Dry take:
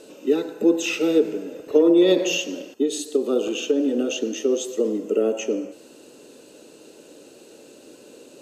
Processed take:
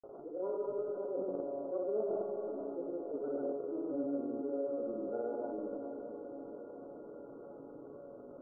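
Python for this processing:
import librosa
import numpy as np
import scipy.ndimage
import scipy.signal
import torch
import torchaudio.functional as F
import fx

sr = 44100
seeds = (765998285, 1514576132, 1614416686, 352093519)

y = fx.pitch_glide(x, sr, semitones=3.5, runs='ending unshifted')
y = fx.low_shelf(y, sr, hz=150.0, db=9.0)
y = fx.transient(y, sr, attack_db=-10, sustain_db=10)
y = fx.comb_fb(y, sr, f0_hz=140.0, decay_s=1.7, harmonics='all', damping=0.0, mix_pct=90)
y = fx.granulator(y, sr, seeds[0], grain_ms=100.0, per_s=20.0, spray_ms=100.0, spread_st=0)
y = fx.brickwall_lowpass(y, sr, high_hz=1500.0)
y = fx.echo_diffused(y, sr, ms=531, feedback_pct=47, wet_db=-13.5)
y = fx.env_flatten(y, sr, amount_pct=50)
y = y * librosa.db_to_amplitude(-3.5)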